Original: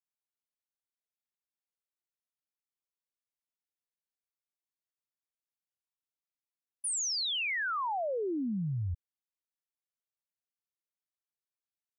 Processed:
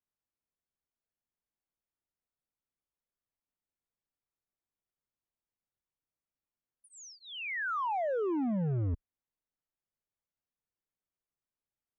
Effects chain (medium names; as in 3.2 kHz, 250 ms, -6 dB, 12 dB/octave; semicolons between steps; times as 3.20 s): tilt EQ -2 dB/octave; hard clipper -31.5 dBFS, distortion -9 dB; boxcar filter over 10 samples; trim +2 dB